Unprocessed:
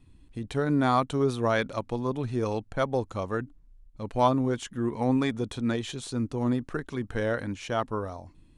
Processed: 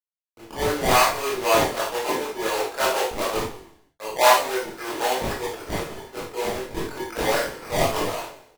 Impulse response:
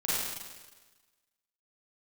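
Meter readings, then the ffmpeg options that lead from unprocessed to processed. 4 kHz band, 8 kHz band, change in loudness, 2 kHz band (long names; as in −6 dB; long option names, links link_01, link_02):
+12.5 dB, +16.0 dB, +5.0 dB, +9.5 dB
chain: -filter_complex "[0:a]highpass=frequency=330:width=0.5412,highpass=frequency=330:width=1.3066,acrossover=split=480 2200:gain=0.0794 1 0.0891[link_01][link_02][link_03];[link_01][link_02][link_03]amix=inputs=3:normalize=0,asplit=2[link_04][link_05];[link_05]acompressor=threshold=-37dB:ratio=6,volume=2dB[link_06];[link_04][link_06]amix=inputs=2:normalize=0,aresample=8000,aeval=exprs='sgn(val(0))*max(abs(val(0))-0.00282,0)':channel_layout=same,aresample=44100,acrusher=samples=23:mix=1:aa=0.000001:lfo=1:lforange=23:lforate=3.9,asplit=6[link_07][link_08][link_09][link_10][link_11][link_12];[link_08]adelay=93,afreqshift=-33,volume=-13dB[link_13];[link_09]adelay=186,afreqshift=-66,volume=-19.7dB[link_14];[link_10]adelay=279,afreqshift=-99,volume=-26.5dB[link_15];[link_11]adelay=372,afreqshift=-132,volume=-33.2dB[link_16];[link_12]adelay=465,afreqshift=-165,volume=-40dB[link_17];[link_07][link_13][link_14][link_15][link_16][link_17]amix=inputs=6:normalize=0[link_18];[1:a]atrim=start_sample=2205,afade=type=out:start_time=0.26:duration=0.01,atrim=end_sample=11907,asetrate=83790,aresample=44100[link_19];[link_18][link_19]afir=irnorm=-1:irlink=0,volume=5dB"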